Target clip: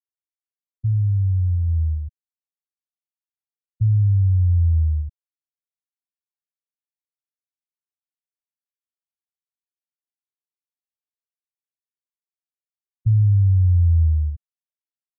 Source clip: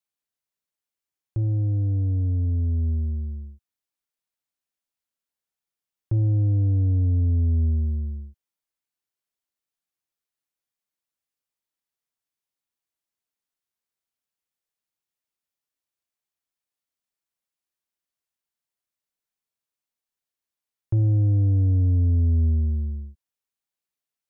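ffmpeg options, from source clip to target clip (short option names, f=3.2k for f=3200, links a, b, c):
-af "afftfilt=real='re*gte(hypot(re,im),0.398)':imag='im*gte(hypot(re,im),0.398)':win_size=1024:overlap=0.75,atempo=1.6,volume=4dB"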